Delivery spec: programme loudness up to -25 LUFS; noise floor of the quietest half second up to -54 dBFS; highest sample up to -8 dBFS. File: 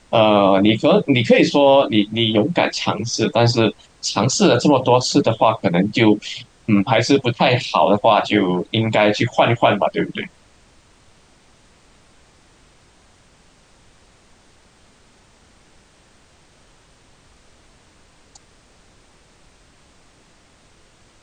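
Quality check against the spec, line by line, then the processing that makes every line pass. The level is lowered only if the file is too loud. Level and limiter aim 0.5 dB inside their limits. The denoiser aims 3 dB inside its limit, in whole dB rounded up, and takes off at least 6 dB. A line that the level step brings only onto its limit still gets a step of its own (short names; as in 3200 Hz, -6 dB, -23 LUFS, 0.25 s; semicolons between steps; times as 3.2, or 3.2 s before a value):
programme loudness -16.5 LUFS: fail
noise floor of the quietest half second -53 dBFS: fail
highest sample -3.0 dBFS: fail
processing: gain -9 dB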